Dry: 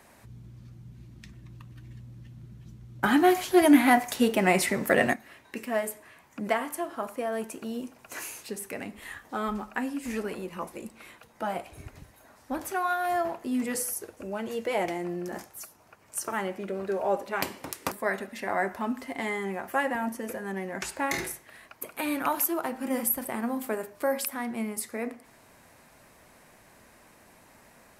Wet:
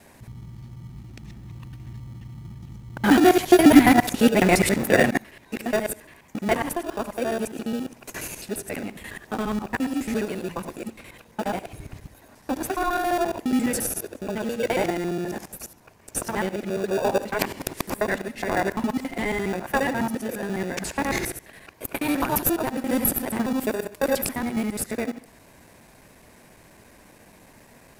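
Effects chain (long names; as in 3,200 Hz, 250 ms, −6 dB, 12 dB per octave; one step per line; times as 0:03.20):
reversed piece by piece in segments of 69 ms
parametric band 1,300 Hz −9 dB 0.23 octaves
in parallel at −6 dB: decimation without filtering 42×
on the sum: level +4 dB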